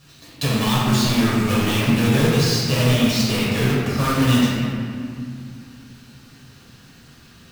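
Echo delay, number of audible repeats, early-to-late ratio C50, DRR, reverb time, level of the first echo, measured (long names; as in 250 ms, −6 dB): no echo audible, no echo audible, −2.5 dB, −8.0 dB, 2.3 s, no echo audible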